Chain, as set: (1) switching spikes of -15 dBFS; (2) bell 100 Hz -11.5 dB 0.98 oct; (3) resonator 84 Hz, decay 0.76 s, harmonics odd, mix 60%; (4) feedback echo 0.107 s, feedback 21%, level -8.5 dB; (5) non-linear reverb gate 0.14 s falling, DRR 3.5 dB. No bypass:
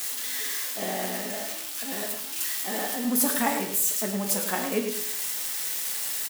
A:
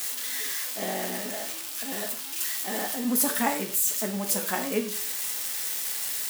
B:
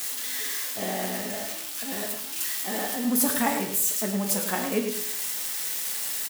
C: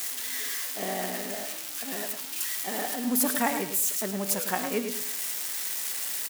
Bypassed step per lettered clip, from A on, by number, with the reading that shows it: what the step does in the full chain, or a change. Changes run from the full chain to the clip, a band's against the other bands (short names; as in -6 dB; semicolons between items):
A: 4, echo-to-direct -2.0 dB to -3.5 dB; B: 2, 125 Hz band +2.5 dB; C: 5, echo-to-direct -2.0 dB to -8.5 dB